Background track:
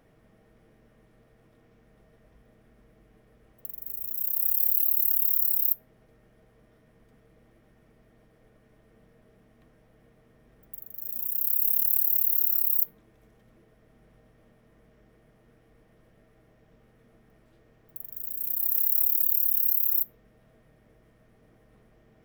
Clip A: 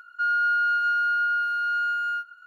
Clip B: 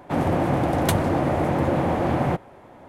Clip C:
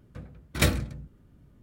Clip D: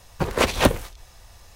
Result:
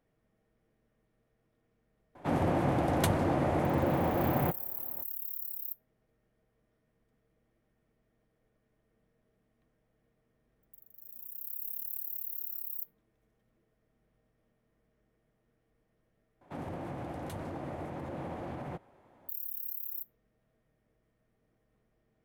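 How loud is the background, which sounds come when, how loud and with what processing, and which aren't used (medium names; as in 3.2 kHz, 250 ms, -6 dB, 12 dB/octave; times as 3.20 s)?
background track -15 dB
2.15 s: add B -7 dB
16.41 s: replace with B -15.5 dB + peak limiter -16 dBFS
not used: A, C, D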